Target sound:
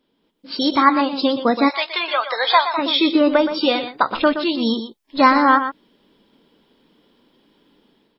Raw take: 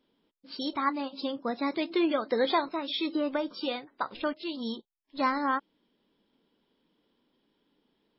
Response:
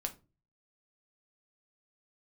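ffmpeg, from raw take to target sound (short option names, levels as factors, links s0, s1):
-filter_complex "[0:a]aecho=1:1:121:0.316,dynaudnorm=f=170:g=5:m=3.16,asplit=3[s0][s1][s2];[s0]afade=t=out:st=1.68:d=0.02[s3];[s1]highpass=f=740:w=0.5412,highpass=f=740:w=1.3066,afade=t=in:st=1.68:d=0.02,afade=t=out:st=2.77:d=0.02[s4];[s2]afade=t=in:st=2.77:d=0.02[s5];[s3][s4][s5]amix=inputs=3:normalize=0,volume=1.68"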